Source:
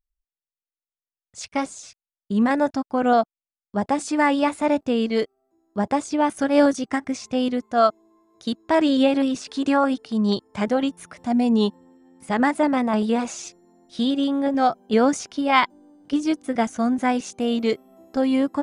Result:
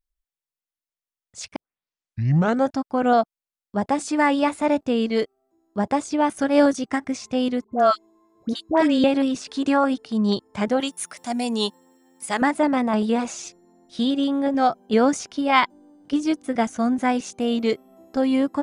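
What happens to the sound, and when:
0:01.56: tape start 1.16 s
0:07.64–0:09.04: all-pass dispersion highs, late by 85 ms, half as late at 1,000 Hz
0:10.80–0:12.42: RIAA equalisation recording

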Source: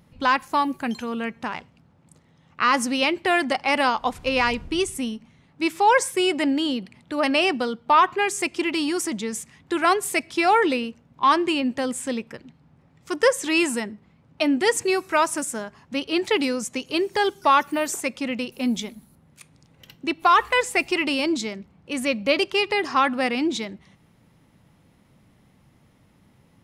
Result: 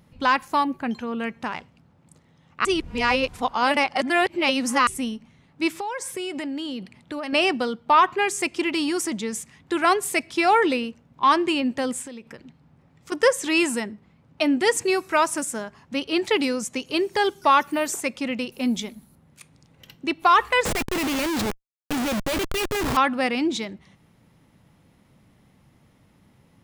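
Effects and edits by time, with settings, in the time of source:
0:00.64–0:01.20: parametric band 11,000 Hz −13.5 dB 2.1 octaves
0:02.65–0:04.87: reverse
0:05.68–0:07.33: downward compressor 8 to 1, threshold −27 dBFS
0:12.02–0:13.12: downward compressor 8 to 1, threshold −35 dBFS
0:20.65–0:22.97: comparator with hysteresis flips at −29 dBFS

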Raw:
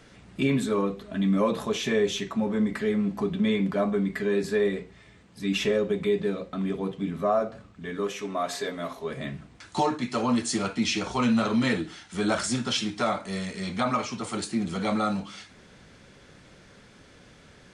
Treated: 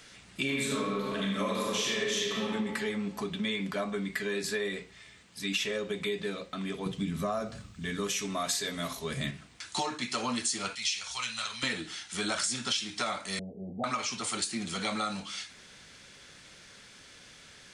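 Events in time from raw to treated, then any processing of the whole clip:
0:00.43–0:02.48: thrown reverb, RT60 1.6 s, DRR −4.5 dB
0:06.86–0:09.31: bass and treble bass +13 dB, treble +6 dB
0:10.75–0:11.63: guitar amp tone stack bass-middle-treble 10-0-10
0:13.39–0:13.84: Butterworth low-pass 790 Hz 96 dB per octave
whole clip: tilt shelving filter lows −8 dB, about 1,400 Hz; downward compressor, threshold −28 dBFS

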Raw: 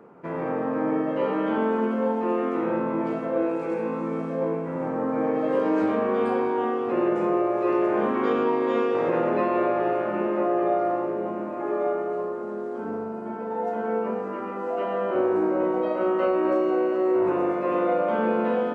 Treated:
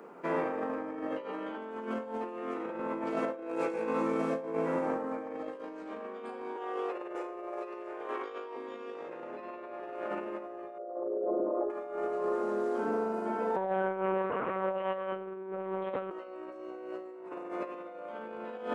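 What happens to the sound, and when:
0:06.56–0:08.56: Butterworth high-pass 340 Hz
0:10.78–0:11.70: spectral envelope exaggerated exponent 2
0:13.56–0:16.11: one-pitch LPC vocoder at 8 kHz 190 Hz
whole clip: high-pass filter 260 Hz 12 dB per octave; high-shelf EQ 3,200 Hz +9.5 dB; compressor whose output falls as the input rises −30 dBFS, ratio −0.5; level −4.5 dB

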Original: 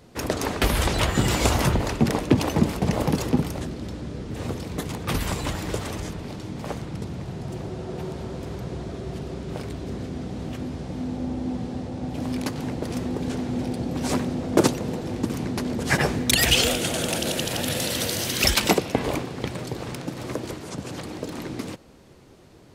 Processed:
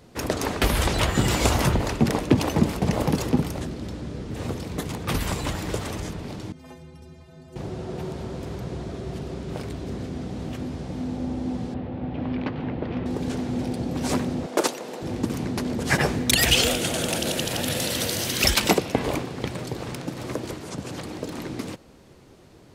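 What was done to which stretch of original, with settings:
0:06.52–0:07.56: stiff-string resonator 76 Hz, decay 0.69 s, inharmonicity 0.03
0:11.74–0:13.06: low-pass filter 3,100 Hz 24 dB per octave
0:14.46–0:15.01: high-pass filter 470 Hz

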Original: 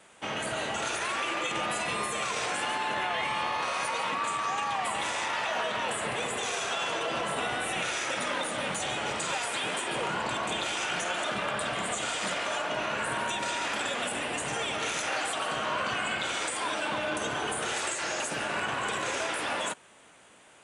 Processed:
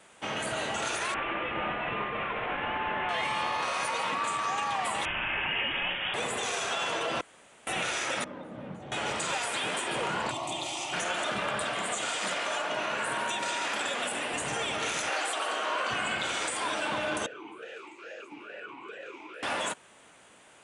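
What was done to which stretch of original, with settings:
0:01.14–0:03.09: variable-slope delta modulation 16 kbit/s
0:05.05–0:06.14: voice inversion scrambler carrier 3,500 Hz
0:07.21–0:07.67: fill with room tone
0:08.24–0:08.92: resonant band-pass 160 Hz, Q 0.81
0:10.31–0:10.93: phaser with its sweep stopped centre 310 Hz, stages 8
0:11.64–0:14.34: high-pass filter 220 Hz 6 dB per octave
0:15.10–0:15.90: high-pass filter 300 Hz 24 dB per octave
0:17.26–0:19.43: formant filter swept between two vowels e-u 2.3 Hz

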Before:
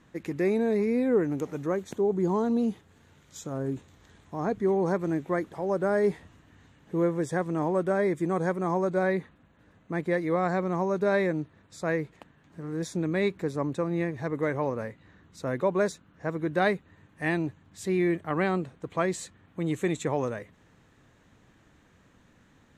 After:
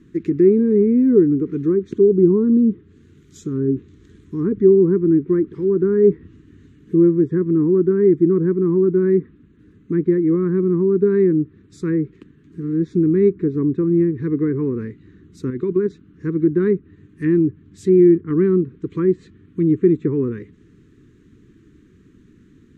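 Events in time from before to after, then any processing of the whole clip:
0:15.50–0:15.90: output level in coarse steps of 9 dB
whole clip: Chebyshev band-stop filter 350–1,200 Hz, order 2; treble cut that deepens with the level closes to 1,300 Hz, closed at −27.5 dBFS; low shelf with overshoot 560 Hz +10 dB, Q 3

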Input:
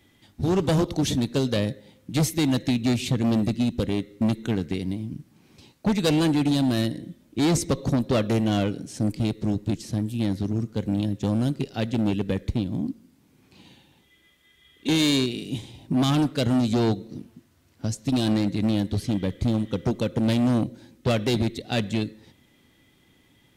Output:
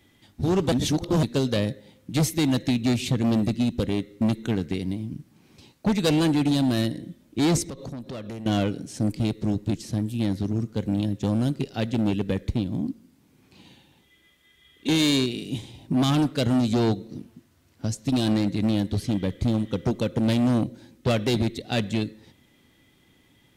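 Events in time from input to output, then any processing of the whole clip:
0:00.72–0:01.23: reverse
0:07.62–0:08.46: downward compressor 8 to 1, threshold −33 dBFS

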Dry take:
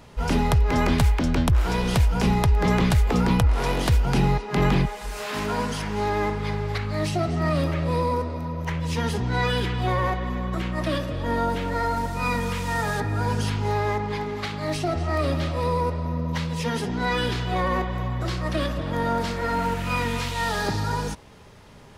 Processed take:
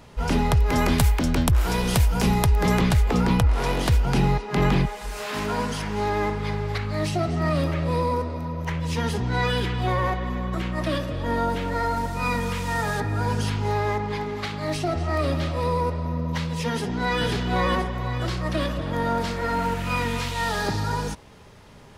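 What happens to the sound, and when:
0:00.57–0:02.81: high-shelf EQ 8,200 Hz +12 dB
0:16.69–0:17.24: delay throw 510 ms, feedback 45%, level −4 dB

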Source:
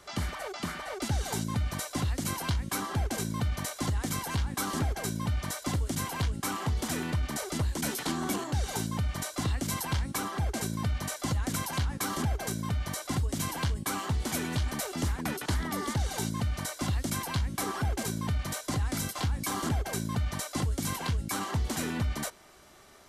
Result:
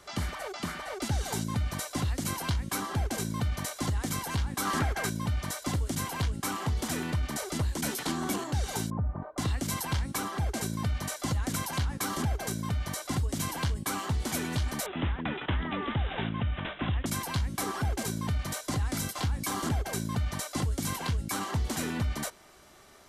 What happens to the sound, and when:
0:04.65–0:05.10: parametric band 1,600 Hz +8 dB 1.8 octaves
0:08.90–0:09.38: low-pass filter 1,100 Hz 24 dB per octave
0:14.86–0:17.06: bad sample-rate conversion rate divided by 6×, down none, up filtered

